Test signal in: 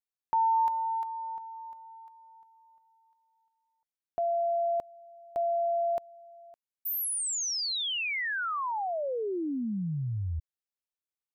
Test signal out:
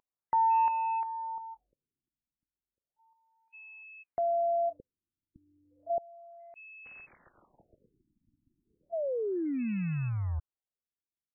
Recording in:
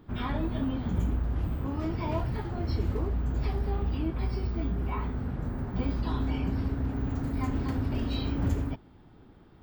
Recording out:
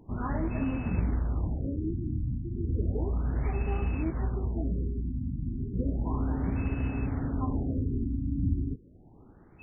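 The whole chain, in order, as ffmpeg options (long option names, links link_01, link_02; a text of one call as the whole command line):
ffmpeg -i in.wav -af "acrusher=bits=5:mode=log:mix=0:aa=0.000001,aeval=exprs='val(0)+0.00447*sin(2*PI*2600*n/s)':channel_layout=same,afftfilt=real='re*lt(b*sr/1024,320*pow(3000/320,0.5+0.5*sin(2*PI*0.33*pts/sr)))':imag='im*lt(b*sr/1024,320*pow(3000/320,0.5+0.5*sin(2*PI*0.33*pts/sr)))':win_size=1024:overlap=0.75" out.wav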